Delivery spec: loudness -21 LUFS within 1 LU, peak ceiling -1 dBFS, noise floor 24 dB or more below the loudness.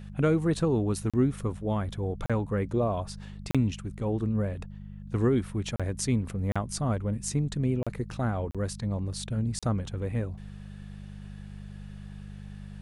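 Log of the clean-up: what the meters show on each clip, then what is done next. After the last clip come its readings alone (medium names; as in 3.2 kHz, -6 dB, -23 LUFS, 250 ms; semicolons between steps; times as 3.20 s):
dropouts 8; longest dropout 36 ms; hum 50 Hz; highest harmonic 200 Hz; hum level -41 dBFS; loudness -29.5 LUFS; peak level -13.5 dBFS; loudness target -21.0 LUFS
-> interpolate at 1.10/2.26/3.51/5.76/6.52/7.83/8.51/9.59 s, 36 ms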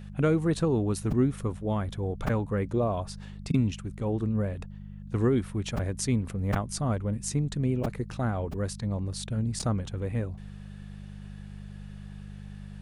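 dropouts 0; hum 50 Hz; highest harmonic 200 Hz; hum level -41 dBFS
-> de-hum 50 Hz, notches 4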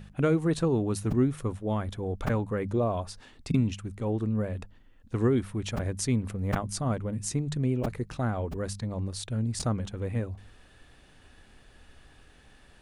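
hum not found; loudness -30.0 LUFS; peak level -11.5 dBFS; loudness target -21.0 LUFS
-> trim +9 dB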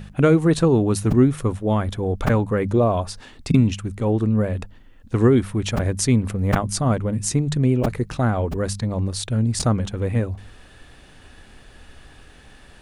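loudness -21.0 LUFS; peak level -2.5 dBFS; noise floor -48 dBFS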